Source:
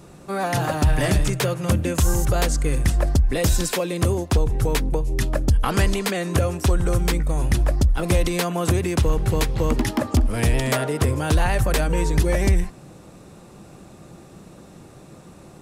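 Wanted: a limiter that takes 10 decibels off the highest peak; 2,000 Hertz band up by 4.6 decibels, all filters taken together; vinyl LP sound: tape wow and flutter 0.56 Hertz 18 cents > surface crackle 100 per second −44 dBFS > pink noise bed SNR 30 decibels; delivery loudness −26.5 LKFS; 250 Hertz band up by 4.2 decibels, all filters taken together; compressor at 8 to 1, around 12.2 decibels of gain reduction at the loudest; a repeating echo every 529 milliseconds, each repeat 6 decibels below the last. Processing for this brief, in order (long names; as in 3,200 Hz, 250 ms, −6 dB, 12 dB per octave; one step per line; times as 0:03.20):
parametric band 250 Hz +6 dB
parametric band 2,000 Hz +5.5 dB
downward compressor 8 to 1, threshold −25 dBFS
brickwall limiter −23 dBFS
repeating echo 529 ms, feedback 50%, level −6 dB
tape wow and flutter 0.56 Hz 18 cents
surface crackle 100 per second −44 dBFS
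pink noise bed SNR 30 dB
level +5.5 dB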